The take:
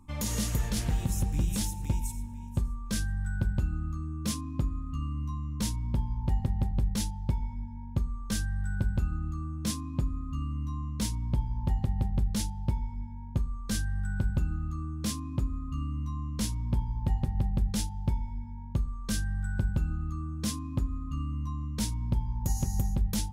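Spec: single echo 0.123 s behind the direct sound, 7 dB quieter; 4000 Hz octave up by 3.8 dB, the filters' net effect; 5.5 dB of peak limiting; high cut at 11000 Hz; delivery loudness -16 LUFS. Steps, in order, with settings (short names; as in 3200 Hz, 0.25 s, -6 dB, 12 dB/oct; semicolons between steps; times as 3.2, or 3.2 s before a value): LPF 11000 Hz; bell 4000 Hz +5 dB; limiter -22 dBFS; echo 0.123 s -7 dB; gain +16.5 dB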